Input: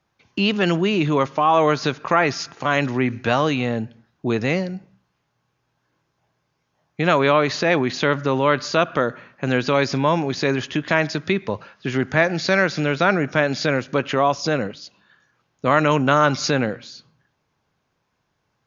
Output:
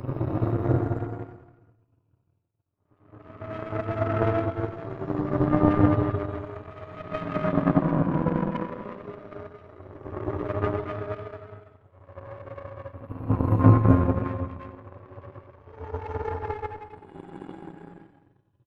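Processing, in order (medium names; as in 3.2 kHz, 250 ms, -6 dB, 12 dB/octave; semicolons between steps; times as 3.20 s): spectrum inverted on a logarithmic axis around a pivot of 410 Hz; resonant high shelf 2.1 kHz +6 dB, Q 3; Paulstretch 6.8×, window 0.25 s, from 8.93 s; power-law waveshaper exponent 2; delay 90 ms -13.5 dB; on a send at -21 dB: reverberation RT60 0.75 s, pre-delay 101 ms; on the sum: trim +3.5 dB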